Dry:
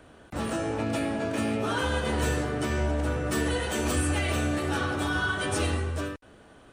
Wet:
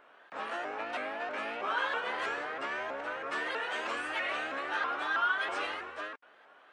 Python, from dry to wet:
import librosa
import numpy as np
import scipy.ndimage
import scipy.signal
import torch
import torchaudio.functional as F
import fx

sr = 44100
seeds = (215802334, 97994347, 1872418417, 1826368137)

y = fx.bandpass_edges(x, sr, low_hz=740.0, high_hz=2200.0)
y = fx.tilt_shelf(y, sr, db=-3.0, hz=970.0)
y = fx.vibrato_shape(y, sr, shape='saw_up', rate_hz=3.1, depth_cents=160.0)